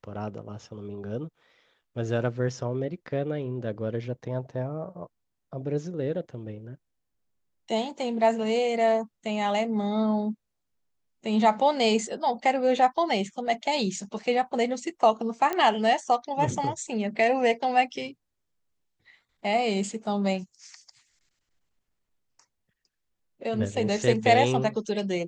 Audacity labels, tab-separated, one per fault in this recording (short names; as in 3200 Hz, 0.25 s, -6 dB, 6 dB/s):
15.530000	15.530000	pop -15 dBFS